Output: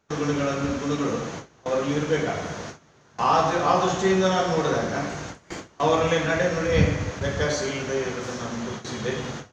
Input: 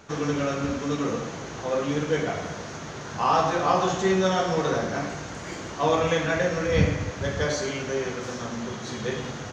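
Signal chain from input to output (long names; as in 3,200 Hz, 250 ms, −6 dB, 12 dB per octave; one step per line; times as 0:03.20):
noise gate with hold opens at −24 dBFS
level +1.5 dB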